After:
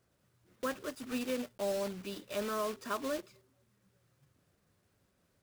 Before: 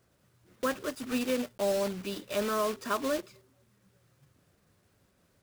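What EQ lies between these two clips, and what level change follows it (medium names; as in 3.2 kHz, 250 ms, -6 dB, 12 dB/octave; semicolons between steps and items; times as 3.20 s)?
flat; -5.5 dB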